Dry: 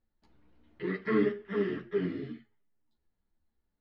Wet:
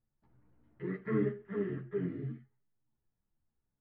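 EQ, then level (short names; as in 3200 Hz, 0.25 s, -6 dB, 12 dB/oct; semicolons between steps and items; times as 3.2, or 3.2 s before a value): Chebyshev low-pass 1500 Hz, order 2; dynamic EQ 1100 Hz, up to -4 dB, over -50 dBFS, Q 1.4; bell 130 Hz +14.5 dB 0.48 oct; -4.5 dB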